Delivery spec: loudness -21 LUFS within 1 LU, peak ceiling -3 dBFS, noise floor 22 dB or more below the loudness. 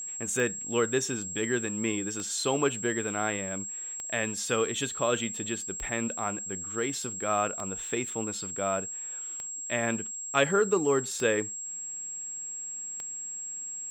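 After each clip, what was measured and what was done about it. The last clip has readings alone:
clicks 8; steady tone 7600 Hz; tone level -35 dBFS; loudness -30.0 LUFS; peak -9.0 dBFS; loudness target -21.0 LUFS
-> de-click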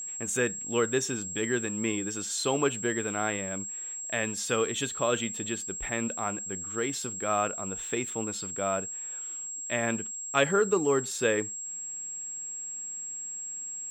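clicks 0; steady tone 7600 Hz; tone level -35 dBFS
-> notch 7600 Hz, Q 30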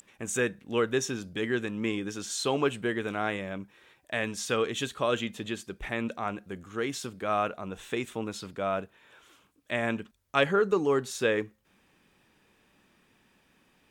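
steady tone none; loudness -30.5 LUFS; peak -9.0 dBFS; loudness target -21.0 LUFS
-> gain +9.5 dB; limiter -3 dBFS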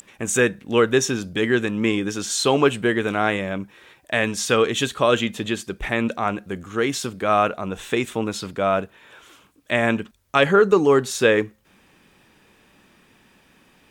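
loudness -21.5 LUFS; peak -3.0 dBFS; noise floor -57 dBFS

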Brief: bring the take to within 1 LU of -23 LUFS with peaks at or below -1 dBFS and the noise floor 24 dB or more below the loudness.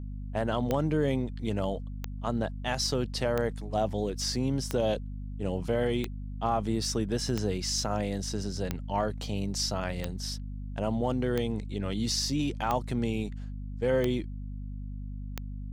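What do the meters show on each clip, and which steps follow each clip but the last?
clicks 12; hum 50 Hz; harmonics up to 250 Hz; hum level -35 dBFS; loudness -31.0 LUFS; peak -14.5 dBFS; loudness target -23.0 LUFS
-> de-click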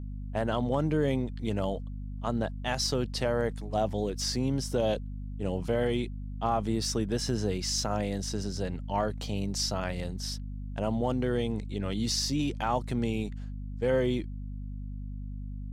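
clicks 0; hum 50 Hz; harmonics up to 250 Hz; hum level -35 dBFS
-> de-hum 50 Hz, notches 5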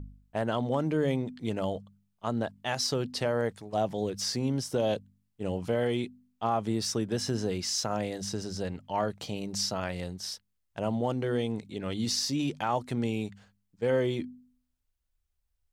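hum none; loudness -31.5 LUFS; peak -16.5 dBFS; loudness target -23.0 LUFS
-> gain +8.5 dB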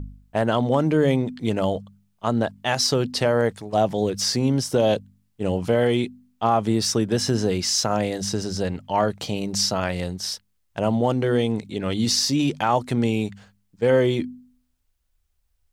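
loudness -23.0 LUFS; peak -8.0 dBFS; noise floor -69 dBFS

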